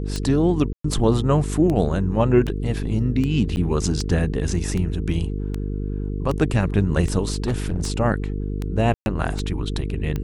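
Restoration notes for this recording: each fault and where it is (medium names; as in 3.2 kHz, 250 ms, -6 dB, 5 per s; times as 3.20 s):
buzz 50 Hz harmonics 9 -26 dBFS
tick 78 rpm -14 dBFS
0.73–0.84 s: dropout 114 ms
3.56–3.57 s: dropout 9.6 ms
7.32–7.88 s: clipped -18 dBFS
8.94–9.06 s: dropout 121 ms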